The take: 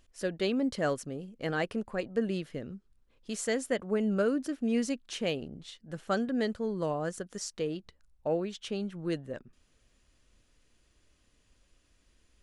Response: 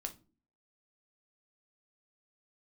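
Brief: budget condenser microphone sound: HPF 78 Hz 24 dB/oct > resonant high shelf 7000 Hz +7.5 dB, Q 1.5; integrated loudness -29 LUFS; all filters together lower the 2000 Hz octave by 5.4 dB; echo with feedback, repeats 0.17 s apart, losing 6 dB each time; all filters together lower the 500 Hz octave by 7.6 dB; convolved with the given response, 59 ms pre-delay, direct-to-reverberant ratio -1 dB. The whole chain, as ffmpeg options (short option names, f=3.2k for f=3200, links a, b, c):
-filter_complex "[0:a]equalizer=f=500:t=o:g=-9,equalizer=f=2k:t=o:g=-6,aecho=1:1:170|340|510|680|850|1020:0.501|0.251|0.125|0.0626|0.0313|0.0157,asplit=2[a][b];[1:a]atrim=start_sample=2205,adelay=59[c];[b][c]afir=irnorm=-1:irlink=0,volume=3dB[d];[a][d]amix=inputs=2:normalize=0,highpass=f=78:w=0.5412,highpass=f=78:w=1.3066,highshelf=f=7k:t=q:w=1.5:g=7.5,volume=2dB"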